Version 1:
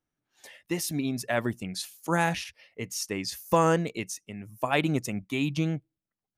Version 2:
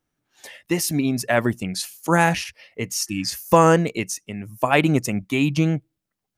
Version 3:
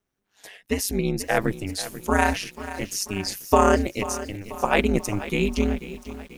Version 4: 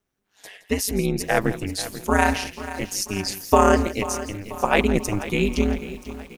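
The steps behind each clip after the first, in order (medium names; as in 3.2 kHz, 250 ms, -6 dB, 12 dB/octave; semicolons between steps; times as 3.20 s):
dynamic bell 3.6 kHz, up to -6 dB, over -54 dBFS, Q 5.2; spectral replace 3.09–3.30 s, 360–2200 Hz both; trim +8 dB
ring modulator 99 Hz; bit-crushed delay 488 ms, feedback 55%, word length 7-bit, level -14 dB
delay 168 ms -15.5 dB; trim +1.5 dB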